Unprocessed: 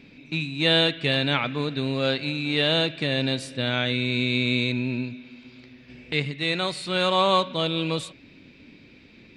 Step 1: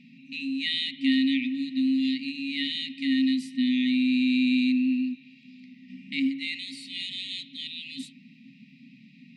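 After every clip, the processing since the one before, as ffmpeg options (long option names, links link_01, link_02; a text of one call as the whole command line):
ffmpeg -i in.wav -af "afftfilt=real='re*(1-between(b*sr/4096,140,1700))':imag='im*(1-between(b*sr/4096,140,1700))':win_size=4096:overlap=0.75,tiltshelf=frequency=1200:gain=9,afreqshift=130" out.wav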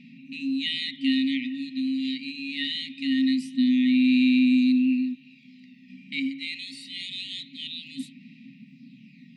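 ffmpeg -i in.wav -af "aphaser=in_gain=1:out_gain=1:delay=1.3:decay=0.43:speed=0.24:type=sinusoidal,volume=-1dB" out.wav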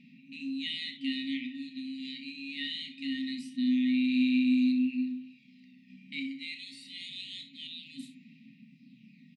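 ffmpeg -i in.wav -filter_complex "[0:a]bandreject=frequency=256.8:width_type=h:width=4,bandreject=frequency=513.6:width_type=h:width=4,bandreject=frequency=770.4:width_type=h:width=4,bandreject=frequency=1027.2:width_type=h:width=4,bandreject=frequency=1284:width_type=h:width=4,bandreject=frequency=1540.8:width_type=h:width=4,bandreject=frequency=1797.6:width_type=h:width=4,bandreject=frequency=2054.4:width_type=h:width=4,bandreject=frequency=2311.2:width_type=h:width=4,bandreject=frequency=2568:width_type=h:width=4,bandreject=frequency=2824.8:width_type=h:width=4,bandreject=frequency=3081.6:width_type=h:width=4,bandreject=frequency=3338.4:width_type=h:width=4,bandreject=frequency=3595.2:width_type=h:width=4,bandreject=frequency=3852:width_type=h:width=4,bandreject=frequency=4108.8:width_type=h:width=4,bandreject=frequency=4365.6:width_type=h:width=4,bandreject=frequency=4622.4:width_type=h:width=4,bandreject=frequency=4879.2:width_type=h:width=4,bandreject=frequency=5136:width_type=h:width=4,bandreject=frequency=5392.8:width_type=h:width=4,bandreject=frequency=5649.6:width_type=h:width=4,bandreject=frequency=5906.4:width_type=h:width=4,bandreject=frequency=6163.2:width_type=h:width=4,bandreject=frequency=6420:width_type=h:width=4,bandreject=frequency=6676.8:width_type=h:width=4,bandreject=frequency=6933.6:width_type=h:width=4,bandreject=frequency=7190.4:width_type=h:width=4,asplit=2[link_01][link_02];[link_02]aecho=0:1:32|63:0.316|0.251[link_03];[link_01][link_03]amix=inputs=2:normalize=0,volume=-7.5dB" out.wav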